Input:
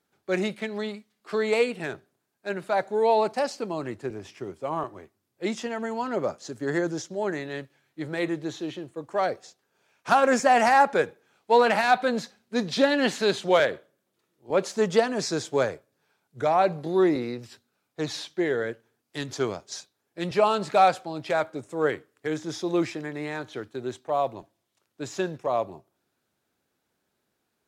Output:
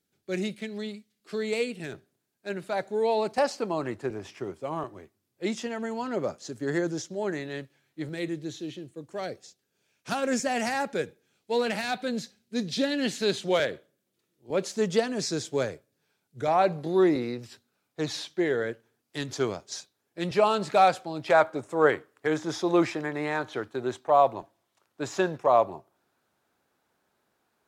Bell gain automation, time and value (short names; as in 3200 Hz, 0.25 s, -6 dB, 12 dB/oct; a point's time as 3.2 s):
bell 980 Hz 1.9 oct
-13.5 dB
from 1.92 s -7 dB
from 3.38 s +3 dB
from 4.6 s -4.5 dB
from 8.09 s -14 dB
from 13.22 s -8 dB
from 16.48 s -1.5 dB
from 21.28 s +7 dB